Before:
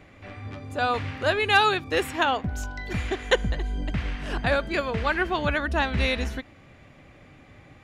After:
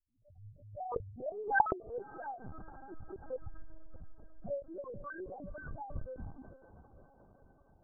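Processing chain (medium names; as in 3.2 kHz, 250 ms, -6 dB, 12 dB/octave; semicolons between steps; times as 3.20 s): cycle switcher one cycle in 2, muted; low-pass 2 kHz 24 dB/octave; gate -43 dBFS, range -31 dB; level-controlled noise filter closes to 1.1 kHz, open at -25 dBFS; reverse; upward compressor, threshold -39 dBFS; reverse; loudest bins only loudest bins 1; on a send: echo that smears into a reverb 508 ms, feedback 59%, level -15 dB; on the sum: LPC vocoder at 8 kHz pitch kept; swell ahead of each attack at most 130 dB/s; trim -3.5 dB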